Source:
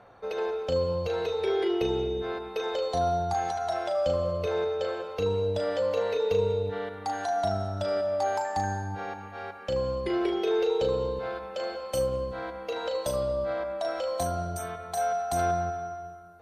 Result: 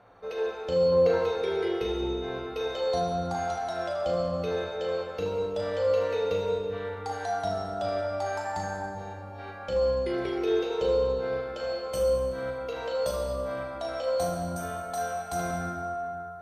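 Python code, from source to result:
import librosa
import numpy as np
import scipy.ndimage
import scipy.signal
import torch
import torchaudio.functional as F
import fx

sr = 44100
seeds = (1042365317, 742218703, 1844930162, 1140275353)

y = fx.spec_box(x, sr, start_s=0.92, length_s=0.26, low_hz=310.0, high_hz=2300.0, gain_db=8)
y = fx.peak_eq(y, sr, hz=1800.0, db=-12.5, octaves=1.9, at=(8.93, 9.38), fade=0.02)
y = fx.rev_plate(y, sr, seeds[0], rt60_s=2.3, hf_ratio=0.55, predelay_ms=0, drr_db=-1.0)
y = y * 10.0 ** (-4.0 / 20.0)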